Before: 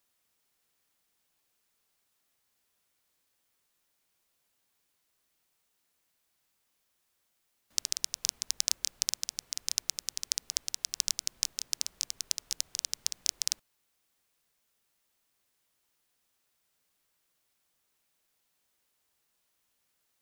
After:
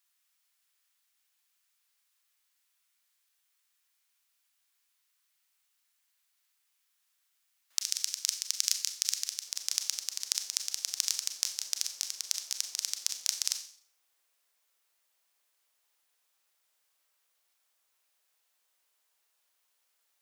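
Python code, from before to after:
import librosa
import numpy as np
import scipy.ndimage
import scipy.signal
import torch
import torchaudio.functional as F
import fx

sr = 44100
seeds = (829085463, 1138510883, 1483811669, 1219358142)

y = fx.highpass(x, sr, hz=fx.steps((0.0, 1300.0), (9.47, 560.0)), slope=12)
y = fx.quant_float(y, sr, bits=6)
y = fx.rev_schroeder(y, sr, rt60_s=0.51, comb_ms=29, drr_db=6.5)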